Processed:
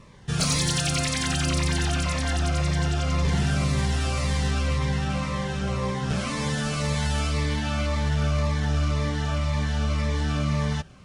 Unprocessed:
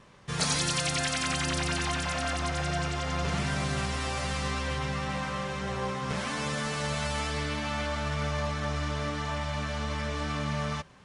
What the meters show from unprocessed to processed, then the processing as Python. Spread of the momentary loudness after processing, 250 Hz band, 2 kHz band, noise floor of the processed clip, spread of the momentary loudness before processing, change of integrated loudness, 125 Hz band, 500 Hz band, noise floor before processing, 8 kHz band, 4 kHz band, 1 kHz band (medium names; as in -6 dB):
4 LU, +6.5 dB, +1.0 dB, -30 dBFS, 5 LU, +5.0 dB, +9.0 dB, +2.5 dB, -35 dBFS, +3.5 dB, +3.0 dB, +0.5 dB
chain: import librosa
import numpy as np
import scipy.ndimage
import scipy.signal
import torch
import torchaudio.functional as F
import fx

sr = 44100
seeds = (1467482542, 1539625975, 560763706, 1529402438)

p1 = fx.low_shelf(x, sr, hz=150.0, db=8.0)
p2 = np.clip(p1, -10.0 ** (-24.0 / 20.0), 10.0 ** (-24.0 / 20.0))
p3 = p1 + F.gain(torch.from_numpy(p2), -4.0).numpy()
y = fx.notch_cascade(p3, sr, direction='falling', hz=1.9)